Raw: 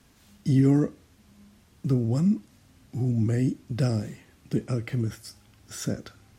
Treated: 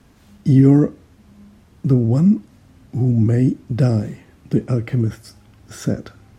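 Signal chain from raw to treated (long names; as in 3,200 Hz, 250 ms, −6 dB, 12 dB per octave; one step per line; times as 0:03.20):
high-shelf EQ 2,000 Hz −9.5 dB
level +9 dB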